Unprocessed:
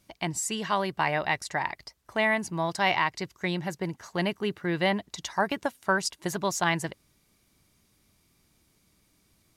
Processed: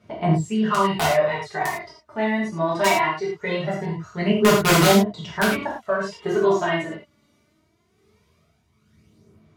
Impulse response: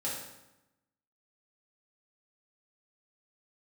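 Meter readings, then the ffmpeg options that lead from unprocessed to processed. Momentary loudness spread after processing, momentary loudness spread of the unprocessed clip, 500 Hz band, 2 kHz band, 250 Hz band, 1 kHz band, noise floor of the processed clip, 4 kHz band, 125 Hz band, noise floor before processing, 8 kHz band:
11 LU, 8 LU, +10.0 dB, +3.5 dB, +9.5 dB, +6.0 dB, -65 dBFS, +6.0 dB, +9.5 dB, -68 dBFS, +4.5 dB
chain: -filter_complex "[0:a]tremolo=f=1.1:d=0.49,highpass=f=68:w=0.5412,highpass=f=68:w=1.3066,highshelf=f=3.2k:g=-5.5,acrossover=split=4200[a][b];[b]alimiter=level_in=15.5dB:limit=-24dB:level=0:latency=1:release=335,volume=-15.5dB[c];[a][c]amix=inputs=2:normalize=0,aphaser=in_gain=1:out_gain=1:delay=3.5:decay=0.65:speed=0.21:type=sinusoidal,asplit=2[d][e];[e]asoftclip=type=tanh:threshold=-21.5dB,volume=-11dB[f];[d][f]amix=inputs=2:normalize=0,aemphasis=mode=reproduction:type=50kf,aeval=exprs='(mod(5.01*val(0)+1,2)-1)/5.01':c=same[g];[1:a]atrim=start_sample=2205,afade=t=out:st=0.14:d=0.01,atrim=end_sample=6615,asetrate=34398,aresample=44100[h];[g][h]afir=irnorm=-1:irlink=0,volume=1dB" -ar 48000 -c:a libvorbis -b:a 96k

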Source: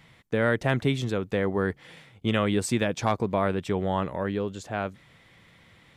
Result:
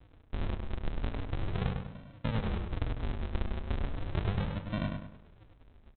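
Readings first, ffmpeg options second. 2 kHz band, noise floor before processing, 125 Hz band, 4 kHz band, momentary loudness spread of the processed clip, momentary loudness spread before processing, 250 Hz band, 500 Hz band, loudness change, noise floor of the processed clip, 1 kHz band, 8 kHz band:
-14.0 dB, -57 dBFS, -4.0 dB, -10.5 dB, 6 LU, 8 LU, -11.0 dB, -16.0 dB, -9.5 dB, -59 dBFS, -13.0 dB, under -40 dB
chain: -filter_complex "[0:a]acompressor=threshold=-28dB:ratio=6,aresample=8000,acrusher=samples=37:mix=1:aa=0.000001:lfo=1:lforange=37:lforate=0.37,aresample=44100,asplit=2[a][b];[b]adelay=101,lowpass=f=2.9k:p=1,volume=-4dB,asplit=2[c][d];[d]adelay=101,lowpass=f=2.9k:p=1,volume=0.4,asplit=2[e][f];[f]adelay=101,lowpass=f=2.9k:p=1,volume=0.4,asplit=2[g][h];[h]adelay=101,lowpass=f=2.9k:p=1,volume=0.4,asplit=2[i][j];[j]adelay=101,lowpass=f=2.9k:p=1,volume=0.4[k];[a][c][e][g][i][k]amix=inputs=6:normalize=0,volume=-1.5dB"

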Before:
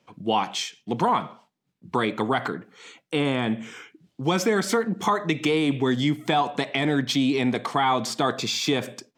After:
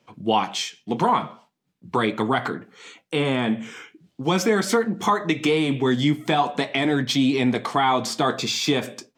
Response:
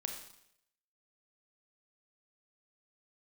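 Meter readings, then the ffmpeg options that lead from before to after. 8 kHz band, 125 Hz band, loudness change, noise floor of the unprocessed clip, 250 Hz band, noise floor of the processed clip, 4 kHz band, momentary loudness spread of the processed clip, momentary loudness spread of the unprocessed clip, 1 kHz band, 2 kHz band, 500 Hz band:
+2.0 dB, +2.0 dB, +2.0 dB, -74 dBFS, +2.0 dB, -72 dBFS, +2.0 dB, 8 LU, 8 LU, +2.0 dB, +2.0 dB, +2.0 dB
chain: -af "flanger=delay=8.3:depth=5.1:regen=-54:speed=0.41:shape=sinusoidal,volume=6dB"

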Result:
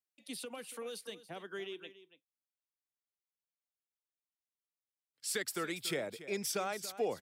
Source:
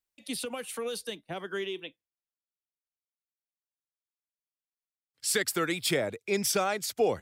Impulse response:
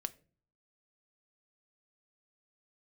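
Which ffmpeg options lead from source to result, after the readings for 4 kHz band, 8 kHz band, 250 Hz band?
-8.5 dB, -8.5 dB, -9.0 dB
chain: -af "highpass=140,aecho=1:1:283:0.178,volume=-8.5dB"

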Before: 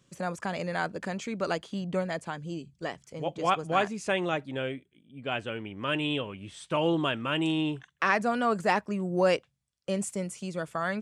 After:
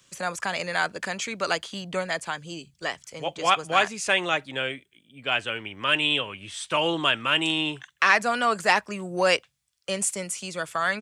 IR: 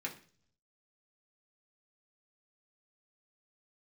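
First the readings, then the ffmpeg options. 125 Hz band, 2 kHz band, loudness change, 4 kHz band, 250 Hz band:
-4.0 dB, +8.5 dB, +5.0 dB, +10.5 dB, -3.0 dB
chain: -filter_complex "[0:a]acrossover=split=140|990|1500[a][b][c][d];[a]aecho=1:1:1.8:0.65[e];[c]asoftclip=type=tanh:threshold=-31dB[f];[e][b][f][d]amix=inputs=4:normalize=0,tiltshelf=f=750:g=-8,volume=3.5dB"

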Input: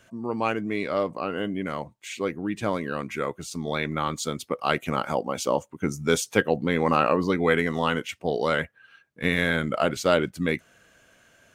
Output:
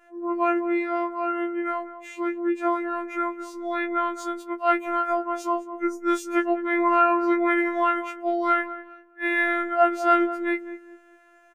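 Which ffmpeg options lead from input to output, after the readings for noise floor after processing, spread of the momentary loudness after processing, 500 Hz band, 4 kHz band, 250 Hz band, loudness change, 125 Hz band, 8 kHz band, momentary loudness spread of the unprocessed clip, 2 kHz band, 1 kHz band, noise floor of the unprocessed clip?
-55 dBFS, 10 LU, -0.5 dB, -11.0 dB, +2.5 dB, +1.5 dB, under -35 dB, -11.0 dB, 9 LU, +0.5 dB, +5.0 dB, -60 dBFS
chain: -filter_complex "[0:a]bandreject=f=60:t=h:w=6,bandreject=f=120:t=h:w=6,bandreject=f=180:t=h:w=6,bandreject=f=240:t=h:w=6,bandreject=f=300:t=h:w=6,bandreject=f=360:t=h:w=6,asplit=2[a][b];[b]adelay=204,lowpass=f=900:p=1,volume=-10dB,asplit=2[c][d];[d]adelay=204,lowpass=f=900:p=1,volume=0.33,asplit=2[e][f];[f]adelay=204,lowpass=f=900:p=1,volume=0.33,asplit=2[g][h];[h]adelay=204,lowpass=f=900:p=1,volume=0.33[i];[a][c][e][g][i]amix=inputs=5:normalize=0,afftfilt=real='hypot(re,im)*cos(PI*b)':imag='0':win_size=1024:overlap=0.75,highshelf=f=2.5k:t=q:w=1.5:g=-12,afftfilt=real='re*4*eq(mod(b,16),0)':imag='im*4*eq(mod(b,16),0)':win_size=2048:overlap=0.75"

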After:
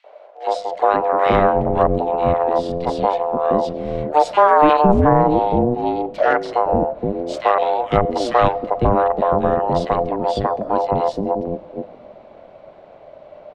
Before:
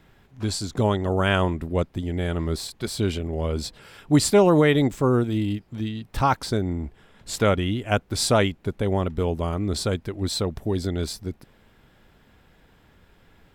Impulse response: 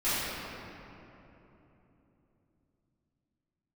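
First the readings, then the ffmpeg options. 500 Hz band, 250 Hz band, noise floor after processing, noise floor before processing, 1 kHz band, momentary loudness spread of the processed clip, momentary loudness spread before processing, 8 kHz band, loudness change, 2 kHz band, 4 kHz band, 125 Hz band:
+8.0 dB, +2.0 dB, -44 dBFS, -58 dBFS, +13.5 dB, 10 LU, 12 LU, under -10 dB, +6.0 dB, +3.0 dB, -4.5 dB, -1.0 dB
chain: -filter_complex "[0:a]aeval=exprs='0.473*(cos(1*acos(clip(val(0)/0.473,-1,1)))-cos(1*PI/2))+0.119*(cos(2*acos(clip(val(0)/0.473,-1,1)))-cos(2*PI/2))+0.0133*(cos(7*acos(clip(val(0)/0.473,-1,1)))-cos(7*PI/2))':c=same,lowshelf=f=140:g=11.5,asplit=2[a][b];[b]acompressor=threshold=-31dB:ratio=6,volume=1.5dB[c];[a][c]amix=inputs=2:normalize=0,highshelf=f=2.6k:g=-9,bandreject=f=50:t=h:w=6,bandreject=f=100:t=h:w=6,aeval=exprs='val(0)*sin(2*PI*600*n/s)':c=same,lowpass=4.3k,acrossover=split=460|2000[d][e][f];[e]adelay=40[g];[d]adelay=510[h];[h][g][f]amix=inputs=3:normalize=0,asplit=2[i][j];[1:a]atrim=start_sample=2205[k];[j][k]afir=irnorm=-1:irlink=0,volume=-34dB[l];[i][l]amix=inputs=2:normalize=0,alimiter=level_in=7dB:limit=-1dB:release=50:level=0:latency=1,volume=-1dB"

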